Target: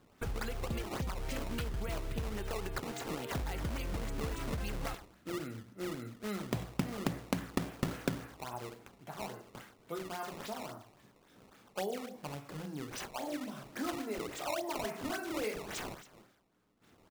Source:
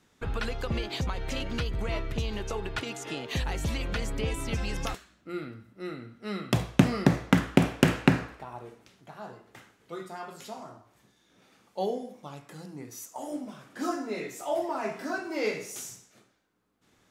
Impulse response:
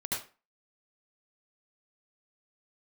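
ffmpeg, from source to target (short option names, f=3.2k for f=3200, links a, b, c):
-af "aecho=1:1:93:0.112,acrusher=samples=16:mix=1:aa=0.000001:lfo=1:lforange=25.6:lforate=3.6,acompressor=threshold=-39dB:ratio=2.5,volume=1.5dB"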